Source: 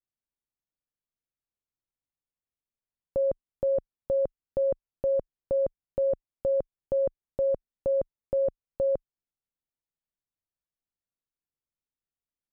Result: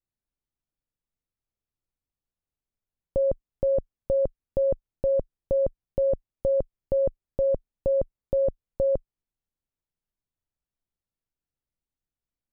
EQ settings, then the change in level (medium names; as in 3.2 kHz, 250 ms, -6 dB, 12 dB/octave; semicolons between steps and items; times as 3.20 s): tilt EQ -2.5 dB/octave; 0.0 dB